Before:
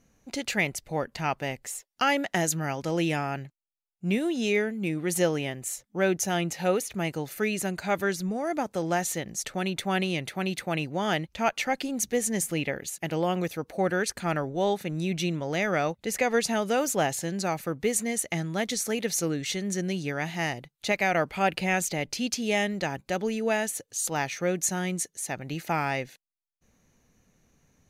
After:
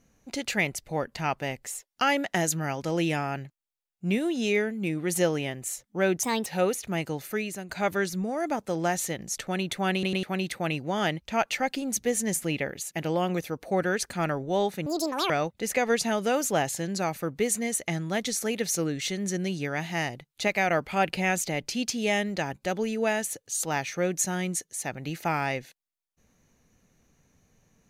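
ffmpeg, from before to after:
-filter_complex "[0:a]asplit=9[s0][s1][s2][s3][s4][s5][s6][s7][s8];[s0]atrim=end=6.234[s9];[s1]atrim=start=6.23:end=6.53,asetpts=PTS-STARTPTS,asetrate=57330,aresample=44100[s10];[s2]atrim=start=6.526:end=7.76,asetpts=PTS-STARTPTS,afade=t=out:st=0.754:d=0.48:silence=0.281838[s11];[s3]atrim=start=7.76:end=10.102,asetpts=PTS-STARTPTS,afade=t=in:d=0.004:c=hsin:silence=0.281838[s12];[s4]atrim=start=9.998:end=10.102[s13];[s5]atrim=start=9.998:end=10.102[s14];[s6]atrim=start=10.298:end=14.934[s15];[s7]atrim=start=14.93:end=15.74,asetpts=PTS-STARTPTS,asetrate=81585,aresample=44100[s16];[s8]atrim=start=15.736[s17];[s9][s10]acrossfade=d=0.004:c1=hsin:c2=hsin[s18];[s11][s12]concat=n=2:v=0:a=1[s19];[s18][s19]acrossfade=d=0.004:c1=hsin:c2=hsin[s20];[s20][s13]acrossfade=d=0.004:c1=hsin:c2=hsin[s21];[s21][s14]acrossfade=d=0.004:c1=hsin:c2=hsin[s22];[s22][s15]acrossfade=d=0.004:c1=hsin:c2=hsin[s23];[s23][s16]acrossfade=d=0.004:c1=hsin:c2=hsin[s24];[s24][s17]acrossfade=d=0.004:c1=hsin:c2=hsin"

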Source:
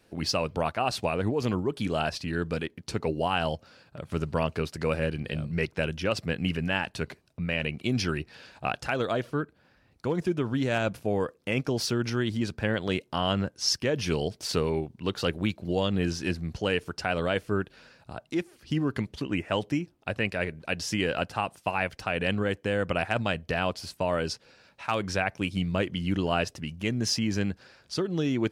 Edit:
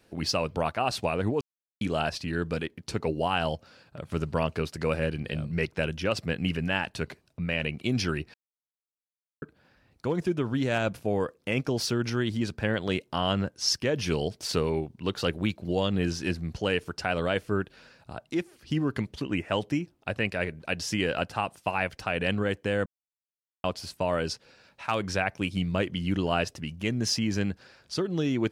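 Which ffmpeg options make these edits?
-filter_complex "[0:a]asplit=7[s0][s1][s2][s3][s4][s5][s6];[s0]atrim=end=1.41,asetpts=PTS-STARTPTS,afade=t=out:st=1.406:d=0.004:c=hsin[s7];[s1]atrim=start=1.41:end=1.81,asetpts=PTS-STARTPTS,volume=0[s8];[s2]atrim=start=1.81:end=8.34,asetpts=PTS-STARTPTS,afade=t=in:d=0.004:c=hsin,afade=t=out:st=6.526:d=0.004:c=hsin[s9];[s3]atrim=start=8.34:end=9.42,asetpts=PTS-STARTPTS,volume=0[s10];[s4]atrim=start=9.42:end=22.86,asetpts=PTS-STARTPTS,afade=t=in:d=0.004:c=hsin,afade=t=out:st=13.436:d=0.004:c=hsin[s11];[s5]atrim=start=22.86:end=23.64,asetpts=PTS-STARTPTS,volume=0[s12];[s6]atrim=start=23.64,asetpts=PTS-STARTPTS,afade=t=in:d=0.004:c=hsin[s13];[s7][s8][s9][s10][s11][s12][s13]concat=n=7:v=0:a=1"

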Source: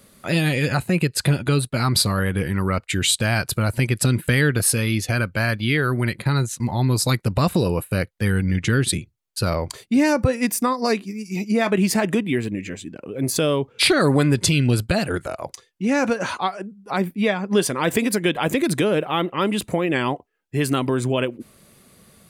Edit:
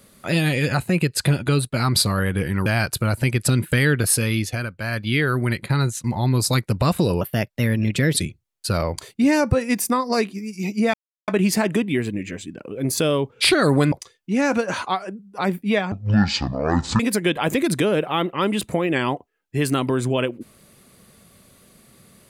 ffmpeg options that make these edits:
-filter_complex "[0:a]asplit=10[s0][s1][s2][s3][s4][s5][s6][s7][s8][s9];[s0]atrim=end=2.662[s10];[s1]atrim=start=3.218:end=5.26,asetpts=PTS-STARTPTS,afade=t=out:st=1.682:d=0.36:silence=0.398107[s11];[s2]atrim=start=5.26:end=5.34,asetpts=PTS-STARTPTS,volume=0.398[s12];[s3]atrim=start=5.34:end=7.774,asetpts=PTS-STARTPTS,afade=t=in:d=0.36:silence=0.398107[s13];[s4]atrim=start=7.77:end=8.89,asetpts=PTS-STARTPTS,asetrate=51597,aresample=44100,atrim=end_sample=42215,asetpts=PTS-STARTPTS[s14];[s5]atrim=start=8.886:end=11.66,asetpts=PTS-STARTPTS,afade=t=out:st=2.77:d=0.004:c=hsin,apad=pad_dur=0.34[s15];[s6]atrim=start=11.66:end=14.302,asetpts=PTS-STARTPTS,afade=t=in:d=0.004:c=hsin[s16];[s7]atrim=start=15.438:end=17.444[s17];[s8]atrim=start=17.44:end=17.99,asetpts=PTS-STARTPTS,asetrate=22491,aresample=44100[s18];[s9]atrim=start=17.986[s19];[s11][s12][s13]concat=n=3:v=0:a=1[s20];[s10][s20]acrossfade=d=0.004:c1=hsin:c2=hsin[s21];[s21][s14]acrossfade=d=0.004:c1=hsin:c2=hsin[s22];[s15][s16]concat=n=2:v=0:a=1[s23];[s22][s23]acrossfade=d=0.004:c1=hsin:c2=hsin[s24];[s24][s17]acrossfade=d=0.004:c1=hsin:c2=hsin[s25];[s25][s18]acrossfade=d=0.004:c1=hsin:c2=hsin[s26];[s26][s19]acrossfade=d=0.004:c1=hsin:c2=hsin"

